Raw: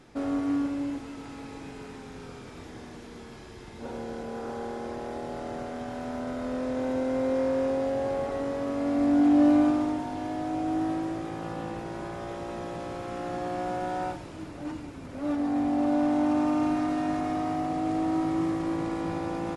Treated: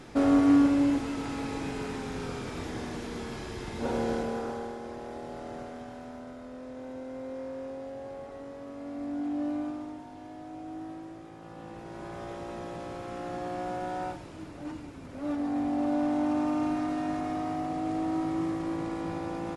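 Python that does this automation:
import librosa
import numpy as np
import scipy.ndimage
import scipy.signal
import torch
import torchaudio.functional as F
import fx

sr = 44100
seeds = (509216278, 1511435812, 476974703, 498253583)

y = fx.gain(x, sr, db=fx.line((4.12, 7.0), (4.79, -4.5), (5.6, -4.5), (6.5, -12.0), (11.4, -12.0), (12.18, -3.0)))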